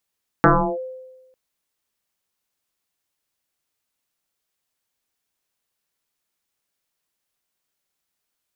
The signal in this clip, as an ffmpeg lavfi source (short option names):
-f lavfi -i "aevalsrc='0.398*pow(10,-3*t/1.16)*sin(2*PI*516*t+6.5*clip(1-t/0.34,0,1)*sin(2*PI*0.32*516*t))':d=0.9:s=44100"